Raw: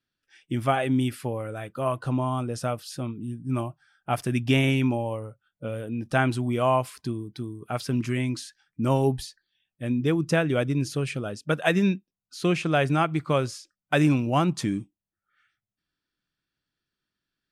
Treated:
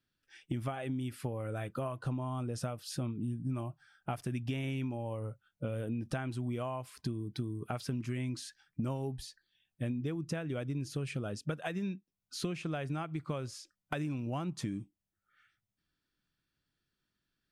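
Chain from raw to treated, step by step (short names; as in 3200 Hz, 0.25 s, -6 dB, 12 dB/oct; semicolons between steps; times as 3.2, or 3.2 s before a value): compressor 16:1, threshold -34 dBFS, peak gain reduction 18.5 dB; low shelf 210 Hz +5.5 dB; gain -1 dB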